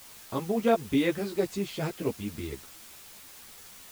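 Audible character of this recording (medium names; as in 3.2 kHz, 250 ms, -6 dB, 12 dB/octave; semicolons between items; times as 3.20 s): a quantiser's noise floor 8-bit, dither triangular; a shimmering, thickened sound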